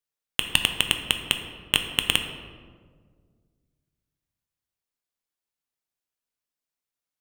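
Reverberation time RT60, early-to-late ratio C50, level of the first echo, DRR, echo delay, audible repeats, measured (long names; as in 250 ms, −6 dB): 1.8 s, 7.0 dB, no echo audible, 5.0 dB, no echo audible, no echo audible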